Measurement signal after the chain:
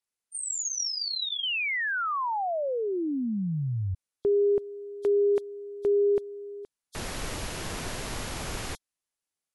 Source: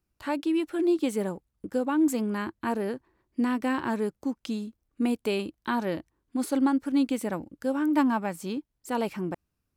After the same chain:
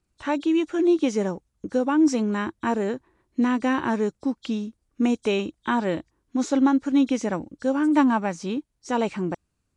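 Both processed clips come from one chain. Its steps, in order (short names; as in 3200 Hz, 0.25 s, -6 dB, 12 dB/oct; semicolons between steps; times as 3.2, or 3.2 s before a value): nonlinear frequency compression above 3200 Hz 1.5:1; dynamic EQ 8600 Hz, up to -4 dB, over -59 dBFS, Q 4.3; gain +4.5 dB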